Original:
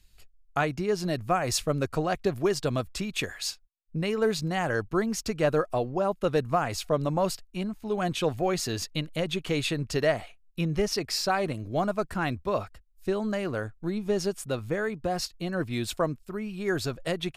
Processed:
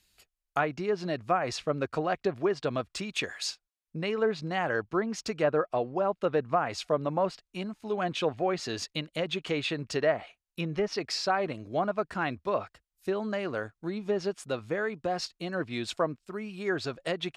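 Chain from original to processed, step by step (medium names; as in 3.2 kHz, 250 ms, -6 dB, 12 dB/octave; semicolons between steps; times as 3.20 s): low-pass that closes with the level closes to 2 kHz, closed at -21 dBFS; high-pass 290 Hz 6 dB/octave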